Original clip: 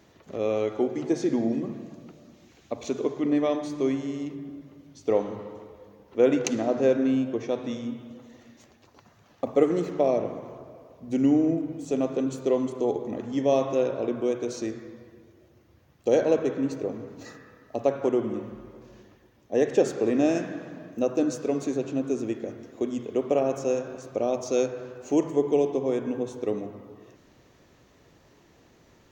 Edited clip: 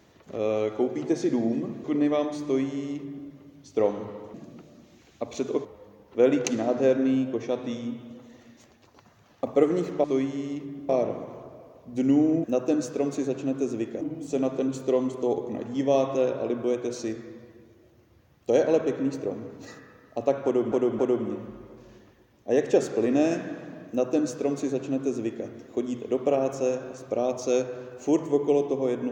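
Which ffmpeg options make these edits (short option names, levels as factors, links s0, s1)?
-filter_complex "[0:a]asplit=10[s0][s1][s2][s3][s4][s5][s6][s7][s8][s9];[s0]atrim=end=1.842[s10];[s1]atrim=start=3.148:end=5.652[s11];[s2]atrim=start=1.838:end=3.152[s12];[s3]atrim=start=5.648:end=10.042[s13];[s4]atrim=start=3.738:end=4.592[s14];[s5]atrim=start=10.038:end=11.592[s15];[s6]atrim=start=20.928:end=22.502[s16];[s7]atrim=start=11.588:end=18.302[s17];[s8]atrim=start=18.028:end=18.302[s18];[s9]atrim=start=18.028[s19];[s10][s11]acrossfade=d=0.004:c1=hsin:c2=hsin[s20];[s20][s12]acrossfade=d=0.004:c1=hsin:c2=hsin[s21];[s21][s13]acrossfade=d=0.004:c1=hsin:c2=hsin[s22];[s22][s14]acrossfade=d=0.004:c1=hsin:c2=hsin[s23];[s23][s15]acrossfade=d=0.004:c1=hsin:c2=hsin[s24];[s24][s16]acrossfade=d=0.004:c1=hsin:c2=hsin[s25];[s25][s17]acrossfade=d=0.004:c1=hsin:c2=hsin[s26];[s26][s18]acrossfade=d=0.004:c1=hsin:c2=hsin[s27];[s27][s19]acrossfade=d=0.004:c1=hsin:c2=hsin"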